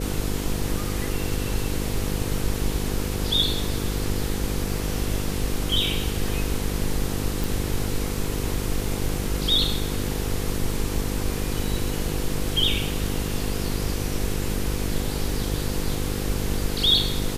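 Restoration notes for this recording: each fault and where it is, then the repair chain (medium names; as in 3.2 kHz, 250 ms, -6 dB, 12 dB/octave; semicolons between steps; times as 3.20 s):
buzz 50 Hz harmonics 10 -29 dBFS
7.44 s: pop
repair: de-click; de-hum 50 Hz, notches 10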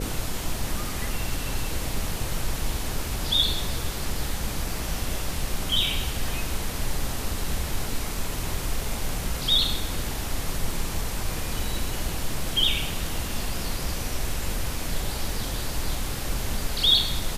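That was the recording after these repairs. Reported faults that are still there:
nothing left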